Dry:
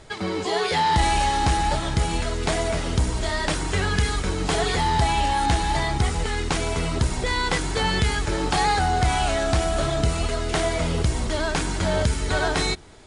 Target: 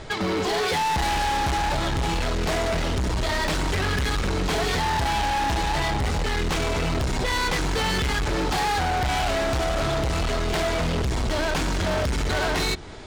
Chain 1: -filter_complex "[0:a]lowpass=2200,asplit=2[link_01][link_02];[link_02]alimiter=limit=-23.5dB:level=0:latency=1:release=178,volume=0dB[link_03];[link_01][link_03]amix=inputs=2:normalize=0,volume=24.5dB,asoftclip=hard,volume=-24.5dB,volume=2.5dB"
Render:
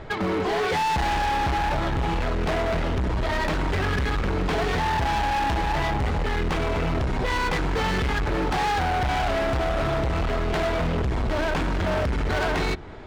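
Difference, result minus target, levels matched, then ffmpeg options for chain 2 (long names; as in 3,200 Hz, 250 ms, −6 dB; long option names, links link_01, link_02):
8,000 Hz band −8.5 dB
-filter_complex "[0:a]lowpass=5800,asplit=2[link_01][link_02];[link_02]alimiter=limit=-23.5dB:level=0:latency=1:release=178,volume=0dB[link_03];[link_01][link_03]amix=inputs=2:normalize=0,volume=24.5dB,asoftclip=hard,volume=-24.5dB,volume=2.5dB"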